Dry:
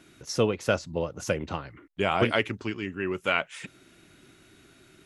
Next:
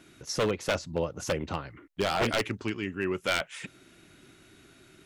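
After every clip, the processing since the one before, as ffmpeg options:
-af "aeval=exprs='0.112*(abs(mod(val(0)/0.112+3,4)-2)-1)':c=same"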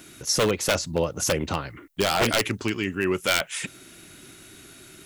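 -filter_complex "[0:a]aemphasis=mode=production:type=50kf,asplit=2[s0][s1];[s1]alimiter=limit=0.0891:level=0:latency=1,volume=1.06[s2];[s0][s2]amix=inputs=2:normalize=0"

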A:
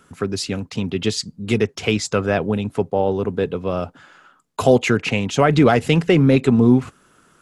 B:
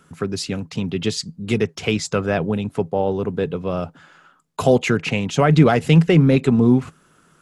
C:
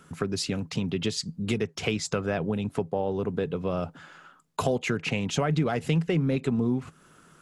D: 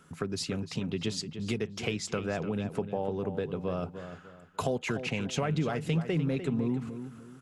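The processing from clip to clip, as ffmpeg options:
-af "equalizer=f=160:t=o:w=0.23:g=9,volume=0.841"
-af "acompressor=threshold=0.0501:ratio=3"
-filter_complex "[0:a]asplit=2[s0][s1];[s1]adelay=299,lowpass=f=3700:p=1,volume=0.316,asplit=2[s2][s3];[s3]adelay=299,lowpass=f=3700:p=1,volume=0.32,asplit=2[s4][s5];[s5]adelay=299,lowpass=f=3700:p=1,volume=0.32,asplit=2[s6][s7];[s7]adelay=299,lowpass=f=3700:p=1,volume=0.32[s8];[s0][s2][s4][s6][s8]amix=inputs=5:normalize=0,volume=0.596"

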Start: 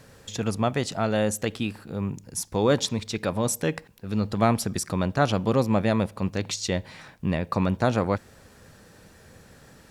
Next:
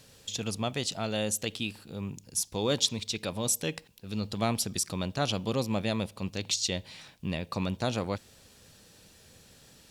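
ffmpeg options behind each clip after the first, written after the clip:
-af "highshelf=f=2300:t=q:w=1.5:g=8,volume=0.422"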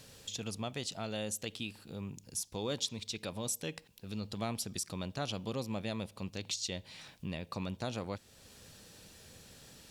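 -af "acompressor=threshold=0.00282:ratio=1.5,volume=1.12"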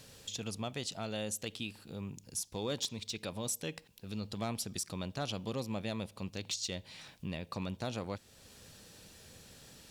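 -af "volume=25.1,asoftclip=hard,volume=0.0398"

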